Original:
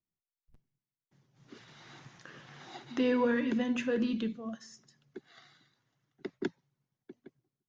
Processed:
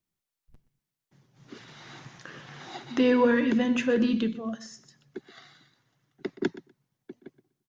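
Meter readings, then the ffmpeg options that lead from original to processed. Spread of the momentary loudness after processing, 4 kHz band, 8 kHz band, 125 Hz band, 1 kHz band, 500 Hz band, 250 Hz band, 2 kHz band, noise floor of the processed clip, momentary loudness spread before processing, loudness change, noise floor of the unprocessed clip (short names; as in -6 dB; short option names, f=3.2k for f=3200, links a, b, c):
23 LU, +6.5 dB, n/a, +6.5 dB, +6.5 dB, +6.5 dB, +6.5 dB, +6.5 dB, under -85 dBFS, 23 LU, +6.5 dB, under -85 dBFS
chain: -af "aecho=1:1:123|246:0.141|0.0212,volume=6.5dB"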